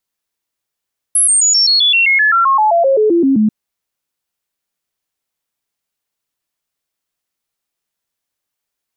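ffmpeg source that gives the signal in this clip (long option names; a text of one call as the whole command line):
ffmpeg -f lavfi -i "aevalsrc='0.398*clip(min(mod(t,0.13),0.13-mod(t,0.13))/0.005,0,1)*sin(2*PI*10900*pow(2,-floor(t/0.13)/3)*mod(t,0.13))':duration=2.34:sample_rate=44100" out.wav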